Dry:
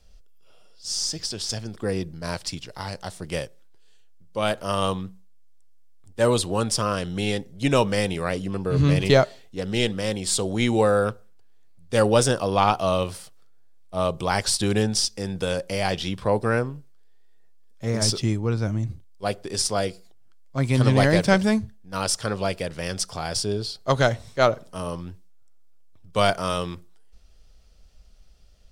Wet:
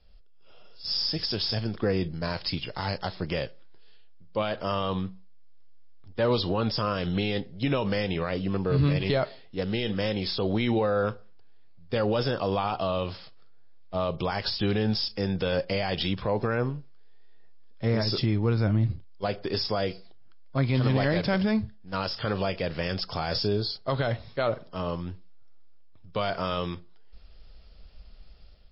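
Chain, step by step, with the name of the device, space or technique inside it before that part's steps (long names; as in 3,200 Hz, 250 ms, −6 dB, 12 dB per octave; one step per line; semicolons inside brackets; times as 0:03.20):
low-bitrate web radio (automatic gain control gain up to 8 dB; brickwall limiter −12 dBFS, peak gain reduction 10.5 dB; level −3.5 dB; MP3 24 kbit/s 12,000 Hz)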